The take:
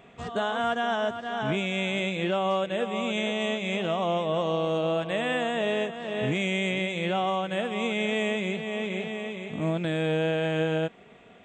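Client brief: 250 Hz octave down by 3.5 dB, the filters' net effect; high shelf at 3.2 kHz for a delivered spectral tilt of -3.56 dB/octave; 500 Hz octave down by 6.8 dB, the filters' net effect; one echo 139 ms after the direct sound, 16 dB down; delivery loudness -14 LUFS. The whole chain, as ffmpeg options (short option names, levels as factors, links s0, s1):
-af "equalizer=f=250:t=o:g=-3,equalizer=f=500:t=o:g=-8,highshelf=f=3200:g=-5,aecho=1:1:139:0.158,volume=7.5"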